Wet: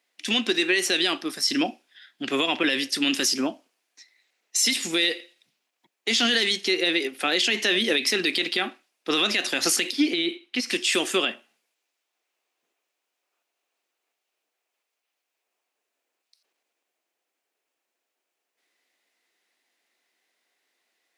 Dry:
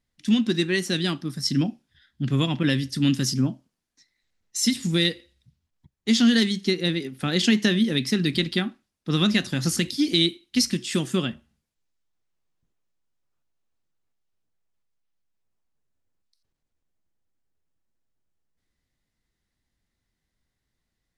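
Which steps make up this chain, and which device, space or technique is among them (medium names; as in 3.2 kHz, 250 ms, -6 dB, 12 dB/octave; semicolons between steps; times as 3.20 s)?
laptop speaker (high-pass 360 Hz 24 dB/octave; peaking EQ 710 Hz +4.5 dB 0.26 oct; peaking EQ 2.5 kHz +7 dB 0.58 oct; peak limiter -20 dBFS, peak gain reduction 13 dB); 9.92–10.70 s: tone controls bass +7 dB, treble -13 dB; trim +8 dB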